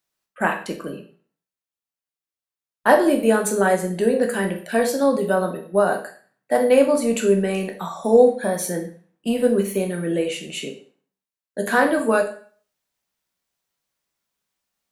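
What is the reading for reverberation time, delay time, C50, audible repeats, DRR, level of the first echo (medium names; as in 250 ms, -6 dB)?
0.40 s, no echo, 9.5 dB, no echo, 2.5 dB, no echo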